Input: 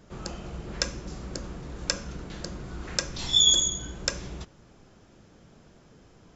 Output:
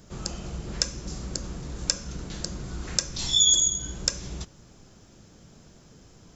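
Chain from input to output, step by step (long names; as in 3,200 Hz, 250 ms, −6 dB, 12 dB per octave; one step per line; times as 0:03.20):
bass and treble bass +4 dB, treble +11 dB
in parallel at +3 dB: downward compressor, threshold −27 dBFS, peak gain reduction 16.5 dB
on the sum: level −8 dB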